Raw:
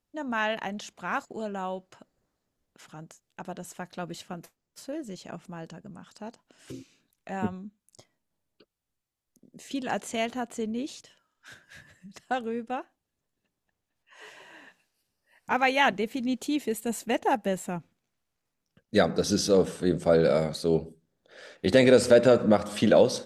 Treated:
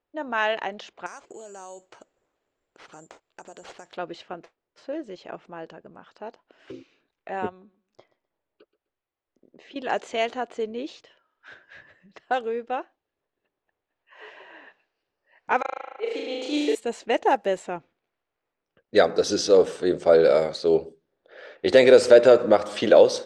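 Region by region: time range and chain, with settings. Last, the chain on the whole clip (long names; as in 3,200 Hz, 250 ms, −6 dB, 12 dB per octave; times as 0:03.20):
0:01.06–0:03.97: downward compressor 16 to 1, threshold −41 dBFS + bad sample-rate conversion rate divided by 6×, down none, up zero stuff
0:07.49–0:09.76: low-pass filter 5,900 Hz + downward compressor 4 to 1, threshold −44 dBFS + repeating echo 127 ms, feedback 24%, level −18 dB
0:15.61–0:16.75: Butterworth high-pass 300 Hz 48 dB per octave + gate with flip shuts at −19 dBFS, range −37 dB + flutter between parallel walls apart 6.4 metres, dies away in 1.3 s
whole clip: low shelf with overshoot 280 Hz −9.5 dB, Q 1.5; low-pass that shuts in the quiet parts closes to 2,600 Hz, open at −20.5 dBFS; low-pass filter 6,900 Hz 12 dB per octave; level +3.5 dB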